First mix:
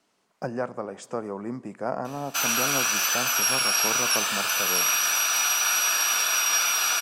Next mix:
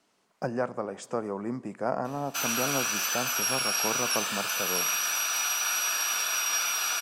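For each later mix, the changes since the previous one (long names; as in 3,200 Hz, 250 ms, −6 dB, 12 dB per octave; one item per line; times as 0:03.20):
background −5.0 dB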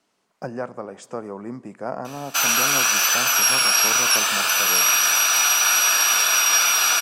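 background +10.5 dB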